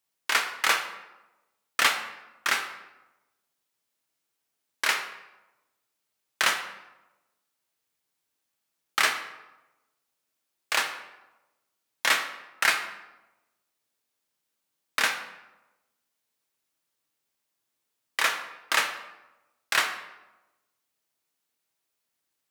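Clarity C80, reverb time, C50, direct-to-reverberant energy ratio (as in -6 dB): 11.0 dB, 1.0 s, 8.5 dB, 4.5 dB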